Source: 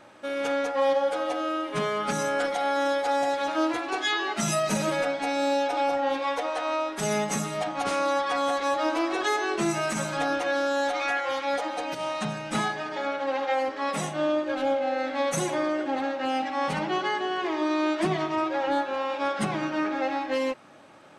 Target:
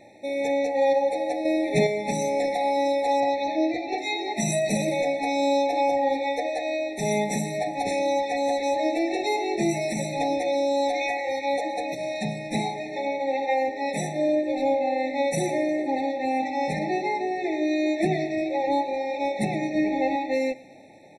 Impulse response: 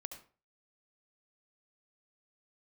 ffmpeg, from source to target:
-filter_complex "[0:a]asettb=1/sr,asplit=3[a][b][c];[a]atrim=end=1.454[d];[b]atrim=start=1.45:end=1.87,asetpts=PTS-STARTPTS,afade=t=in:d=0.004:c=qsin,afade=t=out:st=0.416:d=0.004:c=qsin,acontrast=54[e];[c]atrim=start=1.866[f];[d][e]acrossfade=d=0.004:c1=hsin:c2=qsin[g];[g][f]acrossfade=d=0.004:c1=qsin:c2=hsin,asettb=1/sr,asplit=3[h][i][j];[h]atrim=end=3.204[k];[i]atrim=start=3.2:end=3.98,asetpts=PTS-STARTPTS,afade=t=in:d=0.004:c=qsin,afade=t=out:st=0.776:d=0.004:c=qsin,lowpass=f=5.4k:w=0.5412,lowpass=f=5.4k:w=1.3066[l];[j]atrim=start=3.976[m];[k][l]acrossfade=d=0.004:c1=hsin:c2=qsin[n];[n][m]acrossfade=d=0.004:c1=qsin:c2=hsin,asettb=1/sr,asplit=3[o][p][q];[o]atrim=end=19.754[r];[p]atrim=start=19.75:end=20.16,asetpts=PTS-STARTPTS,afade=t=in:d=0.004:c=qsin,afade=t=out:st=0.406:d=0.004:c=qsin,lowshelf=f=180:g=11.5[s];[q]atrim=start=20.156[t];[r][s]acrossfade=d=0.004:c1=hsin:c2=qsin[u];[u][t]acrossfade=d=0.004:c1=qsin:c2=hsin,aecho=1:1:115|230|345|460|575:0.0944|0.0548|0.0318|0.0184|0.0107,afftfilt=real='re*eq(mod(floor(b*sr/1024/880),2),0)':imag='im*eq(mod(floor(b*sr/1024/880),2),0)':win_size=1024:overlap=0.75,volume=2.5dB"

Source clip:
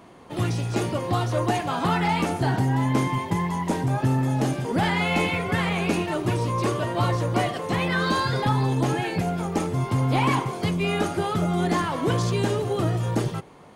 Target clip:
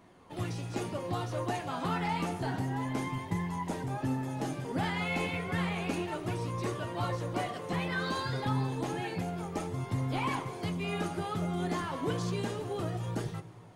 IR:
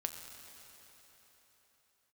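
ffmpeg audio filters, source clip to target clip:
-filter_complex "[0:a]flanger=delay=0.5:depth=7.4:regen=72:speed=0.3:shape=sinusoidal,asplit=2[a][b];[1:a]atrim=start_sample=2205,asetrate=57330,aresample=44100,adelay=11[c];[b][c]afir=irnorm=-1:irlink=0,volume=-8dB[d];[a][d]amix=inputs=2:normalize=0,volume=-5.5dB"

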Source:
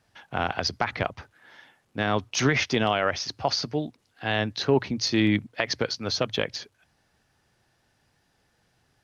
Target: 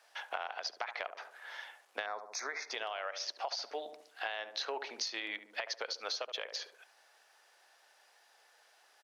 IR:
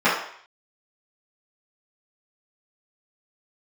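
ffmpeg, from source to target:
-filter_complex "[0:a]highpass=f=560:w=0.5412,highpass=f=560:w=1.3066,asplit=2[a][b];[b]adelay=71,lowpass=f=850:p=1,volume=-9.5dB,asplit=2[c][d];[d]adelay=71,lowpass=f=850:p=1,volume=0.43,asplit=2[e][f];[f]adelay=71,lowpass=f=850:p=1,volume=0.43,asplit=2[g][h];[h]adelay=71,lowpass=f=850:p=1,volume=0.43,asplit=2[i][j];[j]adelay=71,lowpass=f=850:p=1,volume=0.43[k];[c][e][g][i][k]amix=inputs=5:normalize=0[l];[a][l]amix=inputs=2:normalize=0,alimiter=limit=-16.5dB:level=0:latency=1:release=315,acompressor=threshold=-40dB:ratio=10,asettb=1/sr,asplit=3[m][n][o];[m]atrim=end=2.064[p];[n]atrim=start=2.06:end=2.71,asetpts=PTS-STARTPTS,afade=t=in:d=0.004:c=qsin,afade=t=out:st=0.646:d=0.004:c=qsin,asuperstop=centerf=3000:order=4:qfactor=1.5[q];[o]atrim=start=2.706[r];[p][q]acrossfade=d=0.004:c1=hsin:c2=qsin[s];[s][r]acrossfade=d=0.004:c1=qsin:c2=hsin,volume=5dB"

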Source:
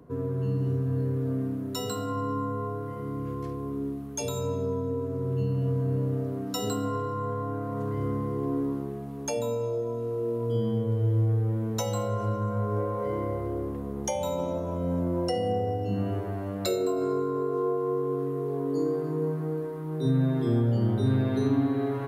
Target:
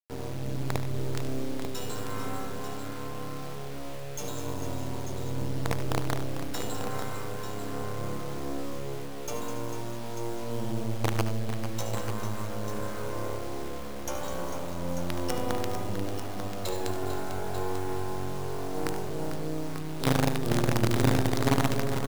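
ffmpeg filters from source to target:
-filter_complex "[0:a]asplit=2[a][b];[b]aecho=0:1:205|410|615|820|1025:0.282|0.138|0.0677|0.0332|0.0162[c];[a][c]amix=inputs=2:normalize=0,acrusher=bits=4:dc=4:mix=0:aa=0.000001,asplit=2[d][e];[e]aecho=0:1:74|95|447|892:0.266|0.178|0.335|0.355[f];[d][f]amix=inputs=2:normalize=0,volume=-1.5dB"

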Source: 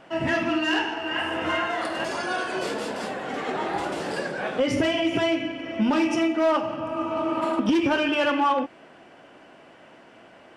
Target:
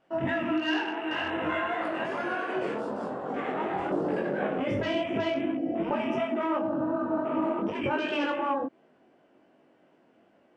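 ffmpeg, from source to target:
-af "afwtdn=0.0224,asetnsamples=n=441:p=0,asendcmd='3.91 equalizer g 11',equalizer=f=290:w=0.48:g=2.5,afftfilt=real='re*lt(hypot(re,im),1.41)':imag='im*lt(hypot(re,im),1.41)':win_size=1024:overlap=0.75,acompressor=threshold=-22dB:ratio=6,flanger=delay=19:depth=3.8:speed=2.7,aresample=22050,aresample=44100"

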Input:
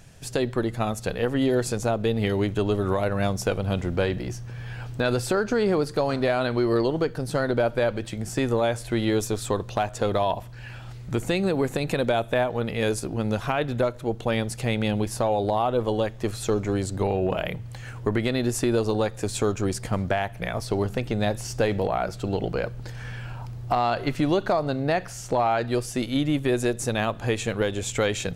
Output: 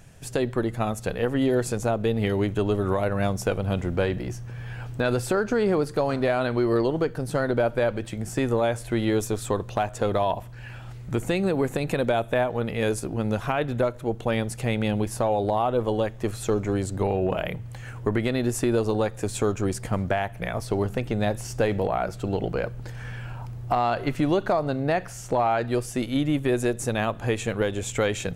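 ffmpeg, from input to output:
-af "equalizer=f=4.5k:t=o:w=1:g=-5"

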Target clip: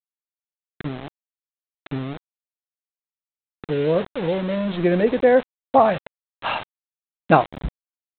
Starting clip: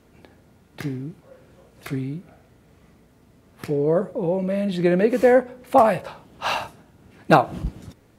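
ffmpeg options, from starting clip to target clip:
-af "afftdn=nr=15:nf=-35,aresample=8000,aeval=exprs='val(0)*gte(abs(val(0)),0.0422)':c=same,aresample=44100"

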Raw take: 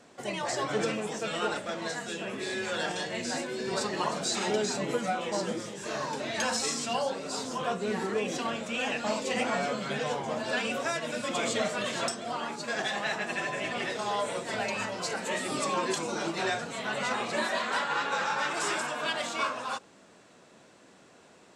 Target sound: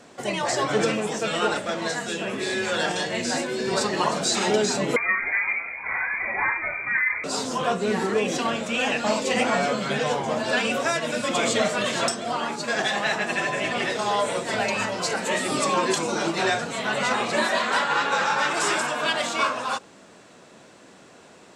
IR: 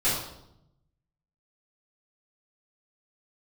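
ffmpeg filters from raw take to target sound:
-filter_complex "[0:a]asettb=1/sr,asplit=3[a][b][c];[a]atrim=end=4.964[d];[b]atrim=start=4.96:end=7.24,asetpts=PTS-STARTPTS,afade=t=in:d=0.004:c=qsin,afade=t=out:st=2.276:d=0.004:c=qsin,lowpass=f=2.2k:t=q:w=0.5098,lowpass=f=2.2k:t=q:w=0.6013,lowpass=f=2.2k:t=q:w=0.9,lowpass=f=2.2k:t=q:w=2.563,afreqshift=-2600[e];[c]atrim=start=7.236[f];[d][e]acrossfade=d=0.004:c1=hsin:c2=qsin[g];[g][f]acrossfade=d=0.004:c1=qsin:c2=hsin,volume=7dB"

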